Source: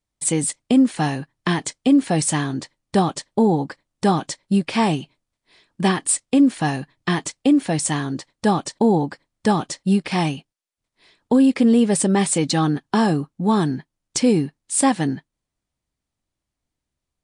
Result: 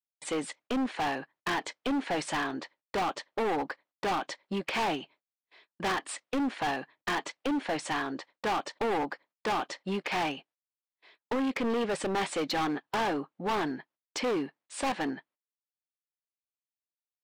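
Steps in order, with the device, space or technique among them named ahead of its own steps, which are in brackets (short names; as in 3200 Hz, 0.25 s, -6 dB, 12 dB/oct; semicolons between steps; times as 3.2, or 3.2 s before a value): walkie-talkie (BPF 470–2800 Hz; hard clip -26.5 dBFS, distortion -6 dB; gate -59 dBFS, range -29 dB)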